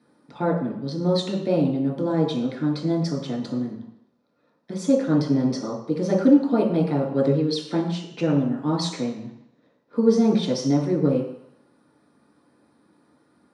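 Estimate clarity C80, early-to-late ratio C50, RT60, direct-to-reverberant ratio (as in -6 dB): 8.5 dB, 5.0 dB, 0.70 s, -4.0 dB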